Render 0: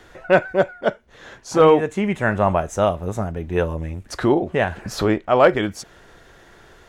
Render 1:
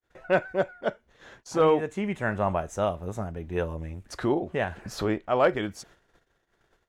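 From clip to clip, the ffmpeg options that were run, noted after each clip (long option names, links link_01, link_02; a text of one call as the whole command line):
ffmpeg -i in.wav -af "agate=range=-43dB:threshold=-45dB:ratio=16:detection=peak,volume=-8dB" out.wav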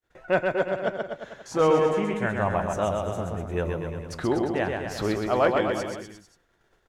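ffmpeg -i in.wav -af "aecho=1:1:130|247|352.3|447.1|532.4:0.631|0.398|0.251|0.158|0.1" out.wav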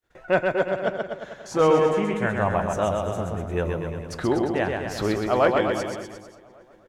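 ffmpeg -i in.wav -filter_complex "[0:a]asplit=2[link_01][link_02];[link_02]adelay=571,lowpass=frequency=2400:poles=1,volume=-22dB,asplit=2[link_03][link_04];[link_04]adelay=571,lowpass=frequency=2400:poles=1,volume=0.33[link_05];[link_01][link_03][link_05]amix=inputs=3:normalize=0,volume=2dB" out.wav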